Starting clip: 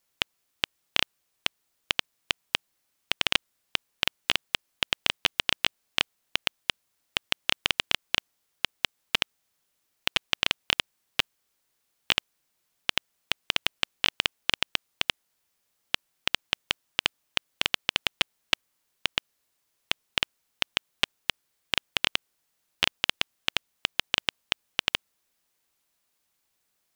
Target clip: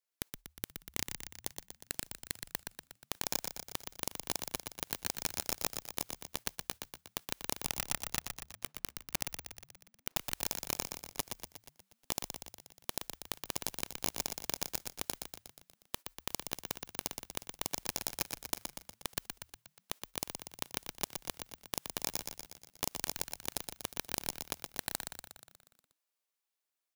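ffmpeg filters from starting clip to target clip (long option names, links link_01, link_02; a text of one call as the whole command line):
ffmpeg -i in.wav -filter_complex "[0:a]agate=range=-20dB:threshold=-39dB:ratio=16:detection=peak,asplit=3[link_01][link_02][link_03];[link_01]afade=type=out:start_time=7.63:duration=0.02[link_04];[link_02]lowpass=frequency=1100:poles=1,afade=type=in:start_time=7.63:duration=0.02,afade=type=out:start_time=10.16:duration=0.02[link_05];[link_03]afade=type=in:start_time=10.16:duration=0.02[link_06];[link_04][link_05][link_06]amix=inputs=3:normalize=0,adynamicequalizer=threshold=0.00112:dfrequency=810:dqfactor=5:tfrequency=810:tqfactor=5:attack=5:release=100:ratio=0.375:range=2:mode=cutabove:tftype=bell,highpass=350,alimiter=limit=-8dB:level=0:latency=1:release=101,dynaudnorm=framelen=230:gausssize=17:maxgain=12dB,asoftclip=type=tanh:threshold=-16dB,aeval=exprs='0.158*(cos(1*acos(clip(val(0)/0.158,-1,1)))-cos(1*PI/2))+0.0631*(cos(6*acos(clip(val(0)/0.158,-1,1)))-cos(6*PI/2))':channel_layout=same,aeval=exprs='(mod(13.3*val(0)+1,2)-1)/13.3':channel_layout=same,asplit=9[link_07][link_08][link_09][link_10][link_11][link_12][link_13][link_14][link_15];[link_08]adelay=120,afreqshift=-39,volume=-6dB[link_16];[link_09]adelay=240,afreqshift=-78,volume=-10.6dB[link_17];[link_10]adelay=360,afreqshift=-117,volume=-15.2dB[link_18];[link_11]adelay=480,afreqshift=-156,volume=-19.7dB[link_19];[link_12]adelay=600,afreqshift=-195,volume=-24.3dB[link_20];[link_13]adelay=720,afreqshift=-234,volume=-28.9dB[link_21];[link_14]adelay=840,afreqshift=-273,volume=-33.5dB[link_22];[link_15]adelay=960,afreqshift=-312,volume=-38.1dB[link_23];[link_07][link_16][link_17][link_18][link_19][link_20][link_21][link_22][link_23]amix=inputs=9:normalize=0,volume=5dB" out.wav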